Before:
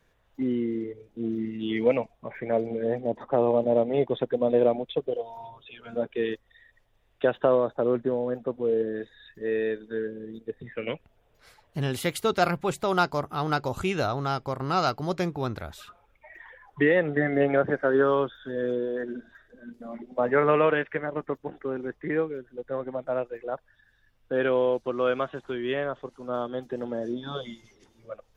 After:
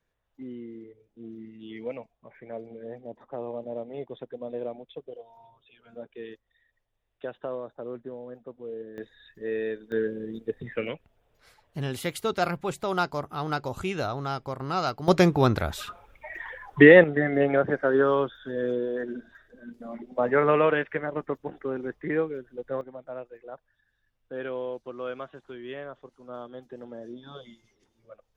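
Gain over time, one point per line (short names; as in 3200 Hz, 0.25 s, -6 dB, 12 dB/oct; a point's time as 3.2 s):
-12.5 dB
from 8.98 s -3 dB
from 9.92 s +3.5 dB
from 10.87 s -3 dB
from 15.08 s +9 dB
from 17.04 s 0 dB
from 22.81 s -9.5 dB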